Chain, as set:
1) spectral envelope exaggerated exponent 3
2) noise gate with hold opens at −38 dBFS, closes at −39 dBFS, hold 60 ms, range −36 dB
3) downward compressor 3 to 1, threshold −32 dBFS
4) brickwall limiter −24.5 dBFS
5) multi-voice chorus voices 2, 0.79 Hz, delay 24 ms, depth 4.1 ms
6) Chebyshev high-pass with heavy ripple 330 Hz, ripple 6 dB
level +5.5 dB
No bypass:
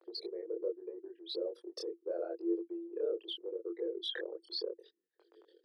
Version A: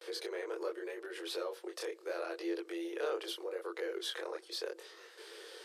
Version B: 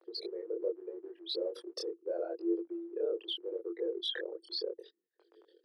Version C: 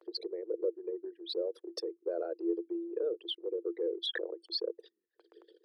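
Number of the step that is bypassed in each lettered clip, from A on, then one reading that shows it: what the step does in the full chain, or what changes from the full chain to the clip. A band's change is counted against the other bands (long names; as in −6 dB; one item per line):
1, 1 kHz band +12.0 dB
3, average gain reduction 10.0 dB
5, change in integrated loudness +3.0 LU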